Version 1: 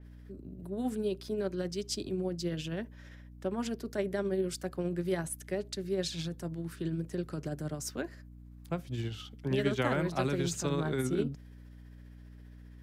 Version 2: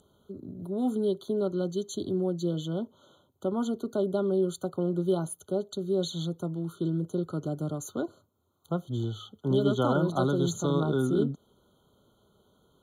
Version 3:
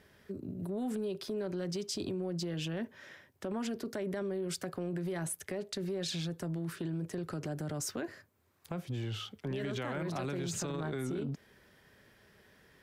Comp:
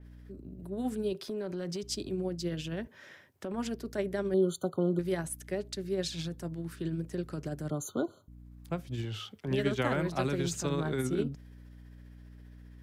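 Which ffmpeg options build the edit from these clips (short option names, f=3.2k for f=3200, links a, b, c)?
-filter_complex "[2:a]asplit=3[a][b][c];[1:a]asplit=2[d][e];[0:a]asplit=6[f][g][h][i][j][k];[f]atrim=end=1.132[l];[a]atrim=start=1.128:end=1.832[m];[g]atrim=start=1.828:end=2.872[n];[b]atrim=start=2.868:end=3.542[o];[h]atrim=start=3.538:end=4.342[p];[d]atrim=start=4.338:end=4.992[q];[i]atrim=start=4.988:end=7.702[r];[e]atrim=start=7.698:end=8.282[s];[j]atrim=start=8.278:end=9.052[t];[c]atrim=start=9.048:end=9.482[u];[k]atrim=start=9.478[v];[l][m]acrossfade=d=0.004:c1=hsin:c2=hsin[w];[w][n]acrossfade=d=0.004:c1=hsin:c2=hsin[x];[x][o]acrossfade=d=0.004:c1=hsin:c2=hsin[y];[y][p]acrossfade=d=0.004:c1=hsin:c2=hsin[z];[z][q]acrossfade=d=0.004:c1=hsin:c2=hsin[aa];[aa][r]acrossfade=d=0.004:c1=hsin:c2=hsin[ab];[ab][s]acrossfade=d=0.004:c1=hsin:c2=hsin[ac];[ac][t]acrossfade=d=0.004:c1=hsin:c2=hsin[ad];[ad][u]acrossfade=d=0.004:c1=hsin:c2=hsin[ae];[ae][v]acrossfade=d=0.004:c1=hsin:c2=hsin"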